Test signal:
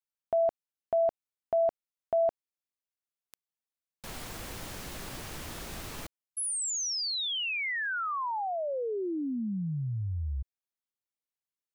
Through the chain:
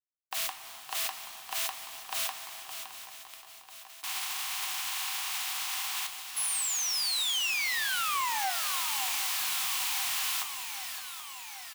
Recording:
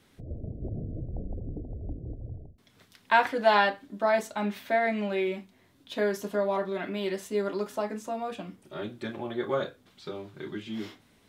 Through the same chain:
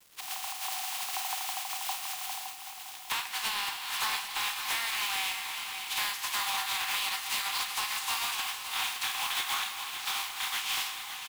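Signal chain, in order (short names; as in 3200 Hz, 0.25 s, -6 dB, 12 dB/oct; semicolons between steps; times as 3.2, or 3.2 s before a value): spectral contrast lowered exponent 0.3; in parallel at -4 dB: crossover distortion -29 dBFS; on the sum: rippled Chebyshev high-pass 740 Hz, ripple 6 dB; two-slope reverb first 0.37 s, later 3.4 s, from -16 dB, DRR 9.5 dB; compressor 20:1, threshold -36 dBFS; bit-crush 10-bit; soft clip -22 dBFS; sample leveller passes 3; on a send: echo 0.565 s -9 dB; on the sum: lo-fi delay 0.78 s, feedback 80%, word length 10-bit, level -14 dB; gain -1 dB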